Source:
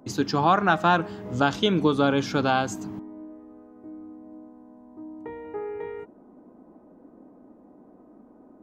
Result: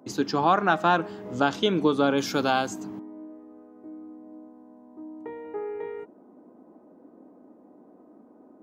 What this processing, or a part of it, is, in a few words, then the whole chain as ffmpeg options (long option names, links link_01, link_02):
filter by subtraction: -filter_complex "[0:a]asplit=2[link_01][link_02];[link_02]lowpass=340,volume=-1[link_03];[link_01][link_03]amix=inputs=2:normalize=0,asplit=3[link_04][link_05][link_06];[link_04]afade=type=out:start_time=2.17:duration=0.02[link_07];[link_05]aemphasis=mode=production:type=50fm,afade=type=in:start_time=2.17:duration=0.02,afade=type=out:start_time=2.67:duration=0.02[link_08];[link_06]afade=type=in:start_time=2.67:duration=0.02[link_09];[link_07][link_08][link_09]amix=inputs=3:normalize=0,volume=-2dB"